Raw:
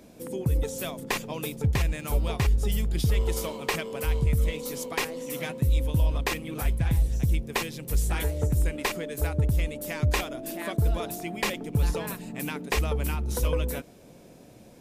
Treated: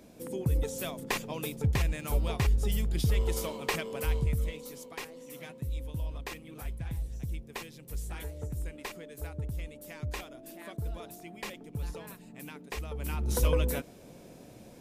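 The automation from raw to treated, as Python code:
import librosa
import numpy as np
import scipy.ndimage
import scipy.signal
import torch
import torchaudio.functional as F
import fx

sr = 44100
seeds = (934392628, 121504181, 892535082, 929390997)

y = fx.gain(x, sr, db=fx.line((4.11, -3.0), (4.83, -12.0), (12.89, -12.0), (13.29, 0.0)))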